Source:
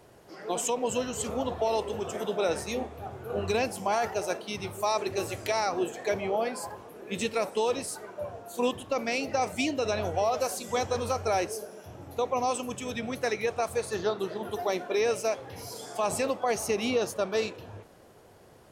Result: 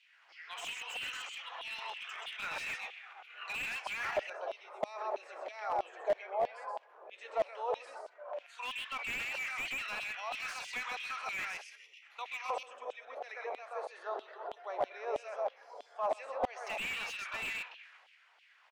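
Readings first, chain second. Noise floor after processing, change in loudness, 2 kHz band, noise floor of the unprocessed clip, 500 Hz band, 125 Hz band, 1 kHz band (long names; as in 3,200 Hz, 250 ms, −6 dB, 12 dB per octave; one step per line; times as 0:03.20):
−64 dBFS, −8.5 dB, −1.5 dB, −55 dBFS, −11.5 dB, −23.5 dB, −8.0 dB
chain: low-pass filter 7,800 Hz 12 dB per octave
gain on a spectral selection 0:11.64–0:12.02, 540–1,800 Hz −27 dB
transient designer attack +1 dB, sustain +8 dB
auto-filter band-pass square 0.12 Hz 560–2,400 Hz
on a send: single-tap delay 129 ms −4 dB
on the sum: auto-filter high-pass saw down 3.1 Hz 730–3,100 Hz
linear-phase brick-wall high-pass 240 Hz
slew-rate limiting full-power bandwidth 38 Hz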